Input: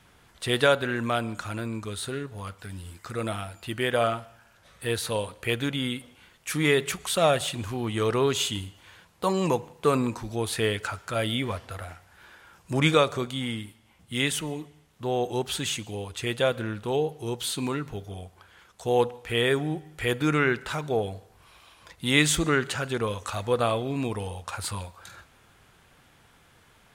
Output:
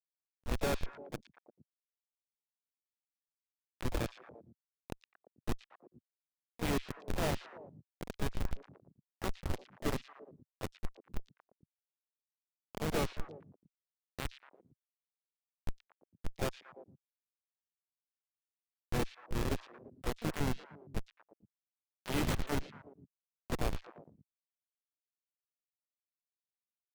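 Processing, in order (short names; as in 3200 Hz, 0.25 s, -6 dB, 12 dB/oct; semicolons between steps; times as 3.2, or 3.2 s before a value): Schmitt trigger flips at -17.5 dBFS; delay with a stepping band-pass 0.115 s, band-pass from 3400 Hz, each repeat -1.4 oct, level -9 dB; harmoniser -7 st -7 dB, +5 st -13 dB, +7 st -11 dB; gain -3.5 dB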